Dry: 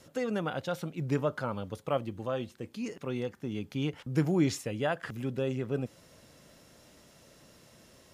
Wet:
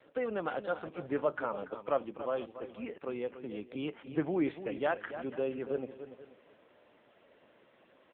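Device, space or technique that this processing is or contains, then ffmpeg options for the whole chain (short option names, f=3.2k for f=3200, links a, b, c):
satellite phone: -filter_complex "[0:a]asplit=3[a][b][c];[a]afade=t=out:st=3.29:d=0.02[d];[b]lowpass=f=9.6k:w=0.5412,lowpass=f=9.6k:w=1.3066,afade=t=in:st=3.29:d=0.02,afade=t=out:st=4.94:d=0.02[e];[c]afade=t=in:st=4.94:d=0.02[f];[d][e][f]amix=inputs=3:normalize=0,highpass=340,lowpass=3k,asplit=2[g][h];[h]adelay=285.7,volume=-11dB,highshelf=f=4k:g=-6.43[i];[g][i]amix=inputs=2:normalize=0,aecho=1:1:483:0.119,volume=1dB" -ar 8000 -c:a libopencore_amrnb -b:a 6700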